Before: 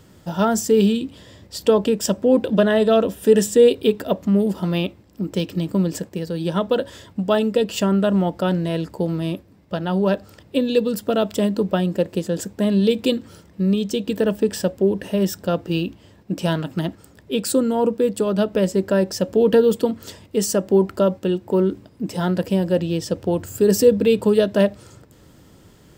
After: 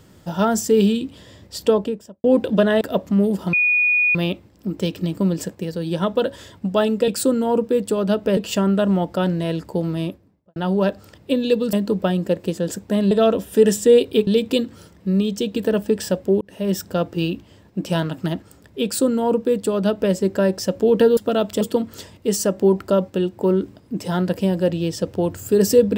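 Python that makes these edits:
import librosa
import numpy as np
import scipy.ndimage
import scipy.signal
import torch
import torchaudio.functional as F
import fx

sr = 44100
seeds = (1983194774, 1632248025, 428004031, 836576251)

y = fx.studio_fade_out(x, sr, start_s=1.59, length_s=0.65)
y = fx.studio_fade_out(y, sr, start_s=9.24, length_s=0.57)
y = fx.edit(y, sr, fx.move(start_s=2.81, length_s=1.16, to_s=12.8),
    fx.insert_tone(at_s=4.69, length_s=0.62, hz=2460.0, db=-14.0),
    fx.move(start_s=10.98, length_s=0.44, to_s=19.7),
    fx.fade_in_span(start_s=14.94, length_s=0.34),
    fx.duplicate(start_s=17.37, length_s=1.29, to_s=7.62), tone=tone)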